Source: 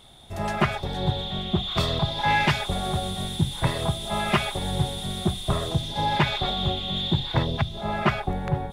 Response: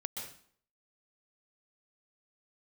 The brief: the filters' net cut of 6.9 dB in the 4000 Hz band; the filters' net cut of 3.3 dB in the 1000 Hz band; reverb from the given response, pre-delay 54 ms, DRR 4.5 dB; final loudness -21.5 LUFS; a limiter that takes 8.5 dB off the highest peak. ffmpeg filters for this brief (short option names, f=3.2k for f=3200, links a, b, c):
-filter_complex "[0:a]equalizer=f=1k:t=o:g=-4,equalizer=f=4k:t=o:g=-8,alimiter=limit=-18.5dB:level=0:latency=1,asplit=2[a][b];[1:a]atrim=start_sample=2205,adelay=54[c];[b][c]afir=irnorm=-1:irlink=0,volume=-4.5dB[d];[a][d]amix=inputs=2:normalize=0,volume=7dB"